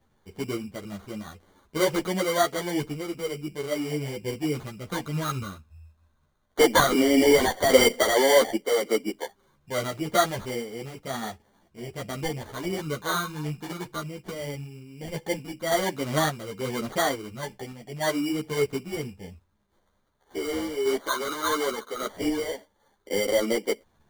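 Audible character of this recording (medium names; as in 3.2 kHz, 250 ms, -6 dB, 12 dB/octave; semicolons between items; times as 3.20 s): phasing stages 6, 0.13 Hz, lowest notch 770–2800 Hz; aliases and images of a low sample rate 2.6 kHz, jitter 0%; random-step tremolo; a shimmering, thickened sound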